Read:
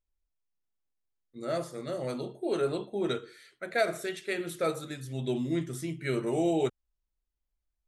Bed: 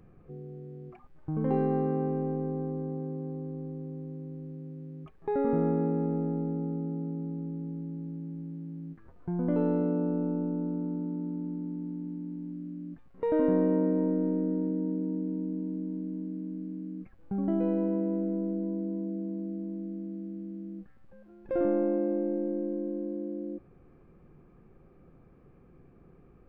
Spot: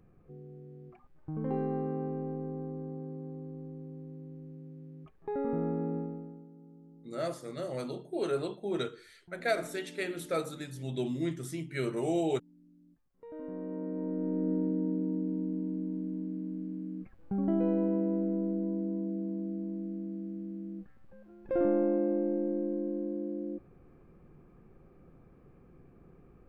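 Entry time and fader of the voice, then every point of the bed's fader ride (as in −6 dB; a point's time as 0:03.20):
5.70 s, −2.5 dB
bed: 0:05.97 −5.5 dB
0:06.49 −21.5 dB
0:13.16 −21.5 dB
0:14.51 −0.5 dB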